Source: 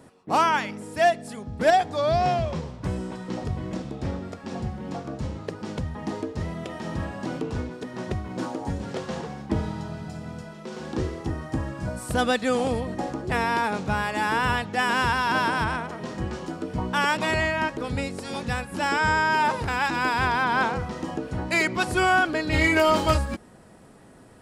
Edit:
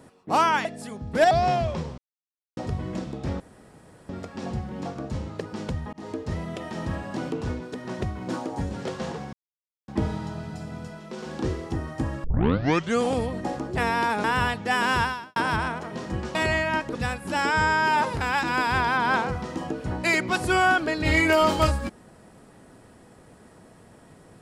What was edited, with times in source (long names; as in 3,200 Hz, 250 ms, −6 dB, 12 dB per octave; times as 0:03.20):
0:00.65–0:01.11: remove
0:01.77–0:02.09: remove
0:02.76–0:03.35: silence
0:04.18: splice in room tone 0.69 s
0:06.02–0:06.37: fade in equal-power
0:09.42: splice in silence 0.55 s
0:11.78: tape start 0.77 s
0:13.78–0:14.32: remove
0:15.11–0:15.44: fade out quadratic
0:16.43–0:17.23: remove
0:17.83–0:18.42: remove